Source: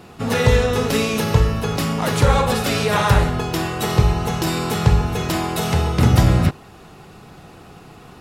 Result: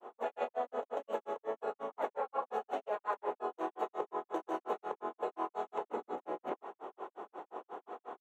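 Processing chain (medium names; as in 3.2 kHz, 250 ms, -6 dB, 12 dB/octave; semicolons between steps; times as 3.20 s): peak limiter -8.5 dBFS, peak gain reduction 6 dB; high-order bell 590 Hz +12.5 dB; formant shift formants +3 st; boxcar filter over 9 samples; reverse; compression 5:1, threshold -25 dBFS, peak gain reduction 17.5 dB; reverse; granulator 138 ms, grains 5.6 per s, pitch spread up and down by 0 st; steep high-pass 250 Hz 36 dB/octave; trim -6.5 dB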